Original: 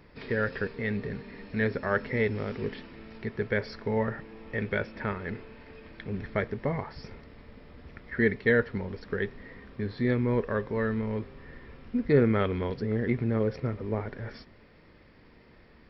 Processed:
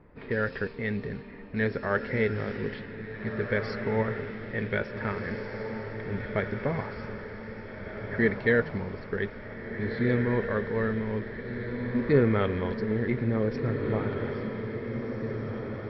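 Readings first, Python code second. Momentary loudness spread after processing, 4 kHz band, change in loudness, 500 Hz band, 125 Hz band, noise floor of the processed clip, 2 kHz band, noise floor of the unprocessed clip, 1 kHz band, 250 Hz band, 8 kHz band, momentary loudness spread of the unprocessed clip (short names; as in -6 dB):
12 LU, +0.5 dB, 0.0 dB, +1.0 dB, +1.5 dB, -42 dBFS, +1.0 dB, -56 dBFS, +1.0 dB, +1.0 dB, n/a, 19 LU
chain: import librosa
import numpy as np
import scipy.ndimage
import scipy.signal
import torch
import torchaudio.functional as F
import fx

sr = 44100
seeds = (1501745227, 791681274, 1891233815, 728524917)

y = fx.env_lowpass(x, sr, base_hz=1300.0, full_db=-25.5)
y = fx.echo_diffused(y, sr, ms=1800, feedback_pct=58, wet_db=-6.5)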